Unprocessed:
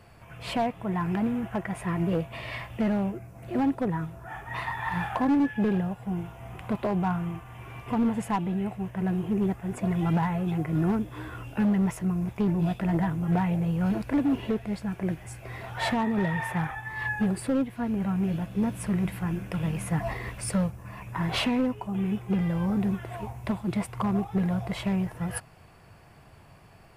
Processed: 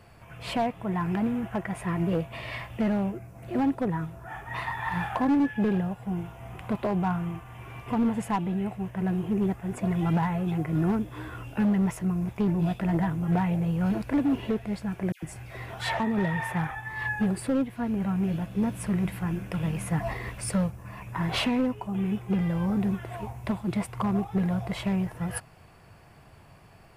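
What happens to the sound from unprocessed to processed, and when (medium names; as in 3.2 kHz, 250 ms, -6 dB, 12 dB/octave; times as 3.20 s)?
15.12–16.00 s: phase dispersion lows, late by 106 ms, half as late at 1.5 kHz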